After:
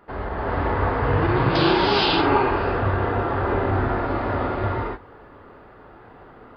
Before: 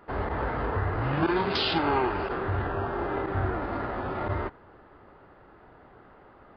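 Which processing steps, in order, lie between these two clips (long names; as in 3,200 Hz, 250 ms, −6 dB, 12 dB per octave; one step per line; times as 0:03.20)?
reverb whose tail is shaped and stops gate 500 ms rising, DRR −6.5 dB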